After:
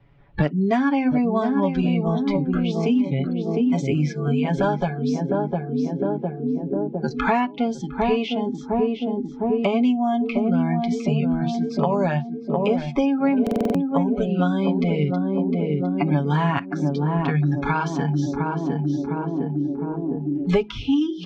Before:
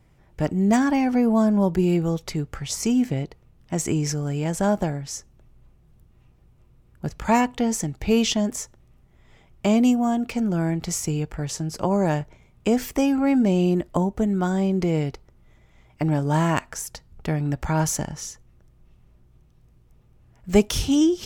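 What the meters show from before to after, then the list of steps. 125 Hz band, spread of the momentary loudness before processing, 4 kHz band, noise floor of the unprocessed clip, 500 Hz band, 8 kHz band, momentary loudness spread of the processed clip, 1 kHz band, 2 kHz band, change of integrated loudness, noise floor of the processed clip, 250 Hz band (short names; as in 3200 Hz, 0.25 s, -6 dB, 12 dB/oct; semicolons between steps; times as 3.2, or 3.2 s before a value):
+2.5 dB, 12 LU, -3.0 dB, -57 dBFS, +2.5 dB, under -15 dB, 5 LU, +3.0 dB, +2.5 dB, +0.5 dB, -35 dBFS, +1.5 dB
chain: de-hum 53.07 Hz, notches 7; spectral noise reduction 29 dB; LPF 3700 Hz 24 dB/oct; comb 7.1 ms, depth 68%; on a send: narrowing echo 0.707 s, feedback 65%, band-pass 320 Hz, level -4 dB; on the sum: dynamic EQ 340 Hz, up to -5 dB, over -35 dBFS, Q 3.7; stuck buffer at 13.42, samples 2048, times 6; three-band squash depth 100%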